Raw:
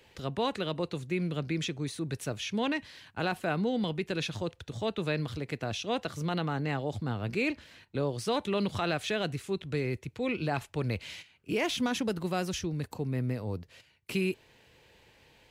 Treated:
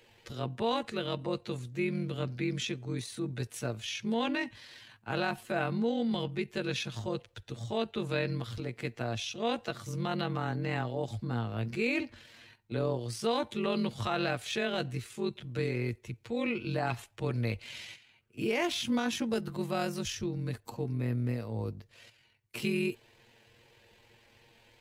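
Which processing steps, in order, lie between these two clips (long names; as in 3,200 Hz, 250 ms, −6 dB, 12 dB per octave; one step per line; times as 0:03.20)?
time stretch by overlap-add 1.6×, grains 46 ms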